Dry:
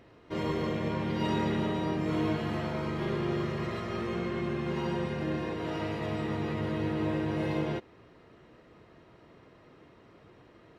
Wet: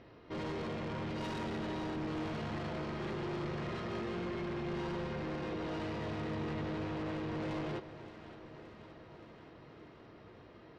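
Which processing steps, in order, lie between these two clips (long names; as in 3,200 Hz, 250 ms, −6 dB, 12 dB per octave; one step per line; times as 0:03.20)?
Chebyshev low-pass filter 5,200 Hz, order 3
soft clipping −36.5 dBFS, distortion −8 dB
on a send: delay that swaps between a low-pass and a high-pass 286 ms, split 980 Hz, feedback 83%, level −12 dB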